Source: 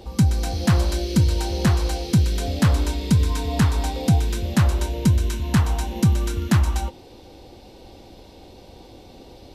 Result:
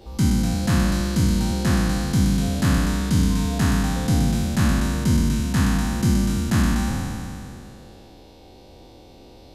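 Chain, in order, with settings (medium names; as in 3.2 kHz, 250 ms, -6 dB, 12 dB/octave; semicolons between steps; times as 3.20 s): spectral sustain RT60 2.64 s; trim -5.5 dB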